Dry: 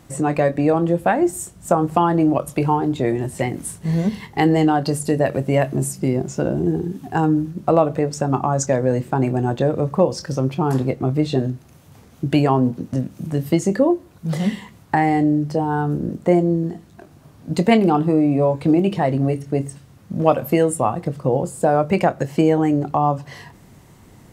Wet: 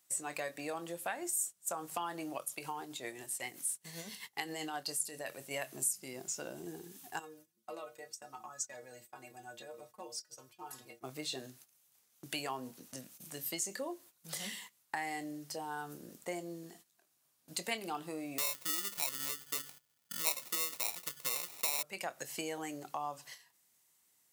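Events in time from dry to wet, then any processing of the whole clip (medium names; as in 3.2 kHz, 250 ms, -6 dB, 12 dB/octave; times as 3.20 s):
2.41–5.51 s: tremolo 7.6 Hz, depth 47%
7.19–11.04 s: inharmonic resonator 110 Hz, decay 0.23 s, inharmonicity 0.008
18.38–21.83 s: sample-rate reducer 1.6 kHz
whole clip: gate -35 dBFS, range -14 dB; differentiator; compression 2:1, threshold -38 dBFS; trim +1.5 dB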